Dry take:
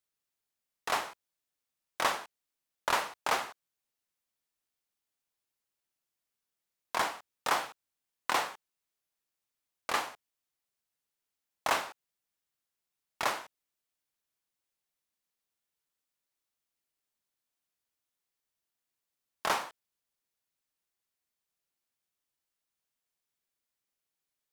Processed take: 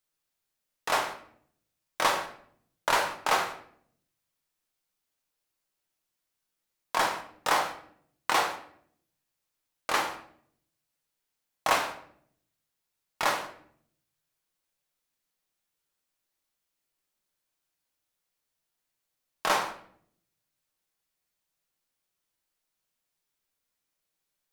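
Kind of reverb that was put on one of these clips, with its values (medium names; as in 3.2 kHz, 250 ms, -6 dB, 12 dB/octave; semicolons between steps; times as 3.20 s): simulated room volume 100 m³, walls mixed, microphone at 0.56 m; trim +3 dB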